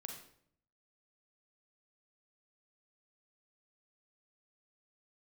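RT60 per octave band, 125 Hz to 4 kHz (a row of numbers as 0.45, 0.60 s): 0.95, 0.85, 0.70, 0.60, 0.55, 0.50 s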